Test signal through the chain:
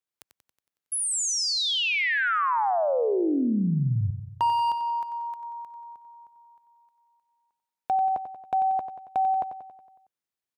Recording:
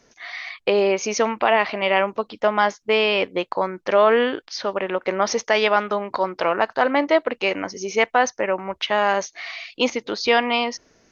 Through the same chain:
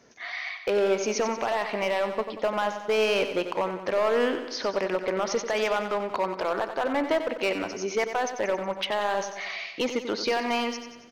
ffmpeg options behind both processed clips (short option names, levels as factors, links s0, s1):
-filter_complex "[0:a]highpass=73,highshelf=f=2800:g=-4.5,asplit=2[s0][s1];[s1]acompressor=threshold=0.0224:ratio=6,volume=0.794[s2];[s0][s2]amix=inputs=2:normalize=0,alimiter=limit=0.335:level=0:latency=1:release=127,volume=5.96,asoftclip=hard,volume=0.168,asplit=2[s3][s4];[s4]aecho=0:1:92|184|276|368|460|552|644:0.335|0.191|0.109|0.062|0.0354|0.0202|0.0115[s5];[s3][s5]amix=inputs=2:normalize=0,volume=0.631"